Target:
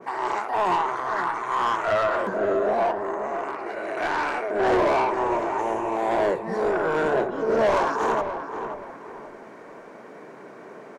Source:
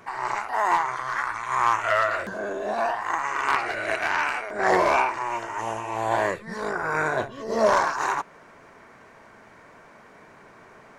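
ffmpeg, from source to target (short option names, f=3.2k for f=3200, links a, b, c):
-filter_complex "[0:a]highpass=f=130:w=0.5412,highpass=f=130:w=1.3066,equalizer=f=400:t=o:w=1.8:g=11,asettb=1/sr,asplit=3[a][b][c];[a]atrim=end=2.914[d];[b]atrim=start=2.91:end=3.97,asetpts=PTS-STARTPTS,afade=t=in:d=0.004:c=qsin,afade=t=out:st=1.056:d=0.004:c=qsin,acrossover=split=250|580[e][f][g];[e]acompressor=threshold=-54dB:ratio=4[h];[f]acompressor=threshold=-37dB:ratio=4[i];[g]acompressor=threshold=-33dB:ratio=4[j];[h][i][j]amix=inputs=3:normalize=0[k];[c]atrim=start=3.966[l];[d][k]acrossfade=d=0.004:c1=hsin:c2=qsin[m];[m][l]acrossfade=d=0.004:c1=qsin:c2=hsin,asoftclip=type=tanh:threshold=-17dB,asplit=2[n][o];[o]adelay=529,lowpass=f=1.4k:p=1,volume=-7dB,asplit=2[p][q];[q]adelay=529,lowpass=f=1.4k:p=1,volume=0.38,asplit=2[r][s];[s]adelay=529,lowpass=f=1.4k:p=1,volume=0.38,asplit=2[t][u];[u]adelay=529,lowpass=f=1.4k:p=1,volume=0.38[v];[n][p][r][t][v]amix=inputs=5:normalize=0,adynamicequalizer=threshold=0.0158:dfrequency=1800:dqfactor=0.7:tfrequency=1800:tqfactor=0.7:attack=5:release=100:ratio=0.375:range=2.5:mode=cutabove:tftype=highshelf"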